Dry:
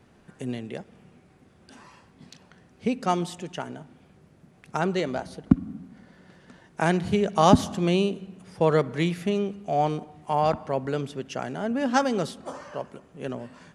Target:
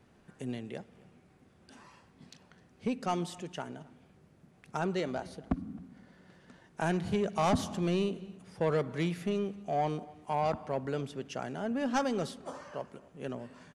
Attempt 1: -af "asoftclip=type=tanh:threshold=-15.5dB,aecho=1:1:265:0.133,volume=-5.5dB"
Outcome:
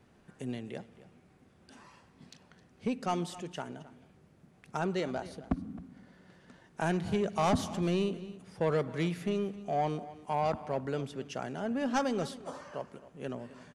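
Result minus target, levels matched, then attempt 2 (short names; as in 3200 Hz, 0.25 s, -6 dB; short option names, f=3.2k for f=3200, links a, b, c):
echo-to-direct +6.5 dB
-af "asoftclip=type=tanh:threshold=-15.5dB,aecho=1:1:265:0.0631,volume=-5.5dB"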